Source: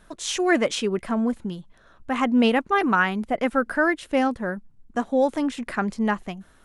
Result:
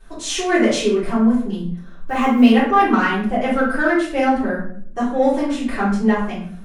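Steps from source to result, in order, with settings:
0:01.58–0:02.50: one scale factor per block 7 bits
in parallel at −7 dB: soft clipping −20.5 dBFS, distortion −10 dB
on the sum: rectangular room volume 74 cubic metres, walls mixed, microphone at 3.4 metres
level −11 dB

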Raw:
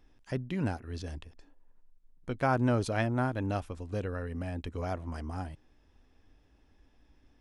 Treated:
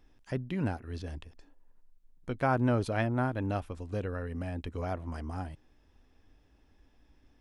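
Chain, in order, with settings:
dynamic equaliser 6,700 Hz, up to −7 dB, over −59 dBFS, Q 1

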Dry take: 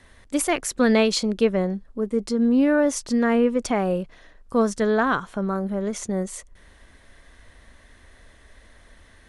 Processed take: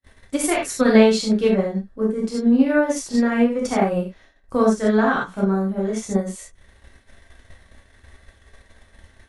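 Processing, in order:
reverb whose tail is shaped and stops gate 110 ms flat, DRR −4.5 dB
transient designer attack +5 dB, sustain −3 dB
downward expander −40 dBFS
level −4.5 dB

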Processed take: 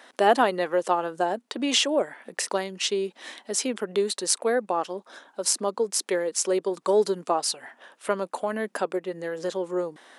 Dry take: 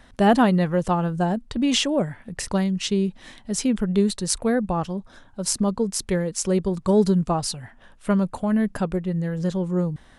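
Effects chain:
high-pass filter 340 Hz 24 dB per octave
in parallel at −1 dB: downward compressor, threshold −34 dBFS, peak gain reduction 18.5 dB
on the sum: level −1 dB

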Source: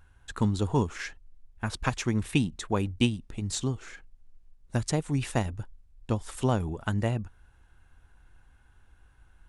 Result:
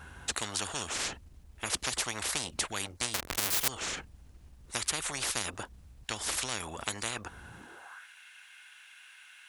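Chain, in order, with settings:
0:03.14–0:03.68: each half-wave held at its own peak
high-pass filter sweep 63 Hz → 2,400 Hz, 0:07.38–0:08.08
every bin compressed towards the loudest bin 10 to 1
level +2 dB

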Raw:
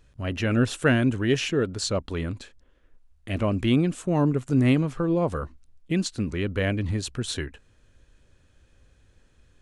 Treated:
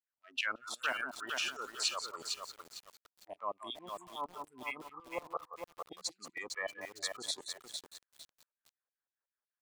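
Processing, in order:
adaptive Wiener filter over 15 samples
repeating echo 177 ms, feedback 24%, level −10.5 dB
brickwall limiter −19.5 dBFS, peak gain reduction 11 dB
auto-filter high-pass saw down 5.4 Hz 730–3,600 Hz
noise reduction from a noise print of the clip's start 24 dB
feedback echo at a low word length 455 ms, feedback 35%, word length 8 bits, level −4.5 dB
level −3.5 dB

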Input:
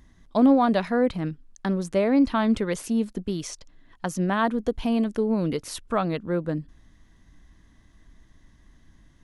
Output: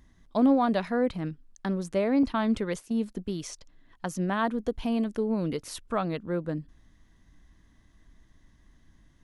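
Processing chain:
0:02.23–0:03.04: noise gate −29 dBFS, range −12 dB
level −4 dB

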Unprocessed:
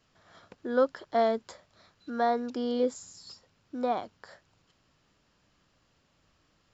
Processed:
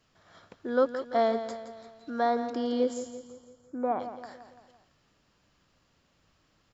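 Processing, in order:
0:03.07–0:03.99: low-pass filter 1,100 Hz → 2,000 Hz 24 dB per octave
on a send: repeating echo 169 ms, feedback 51%, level −11 dB

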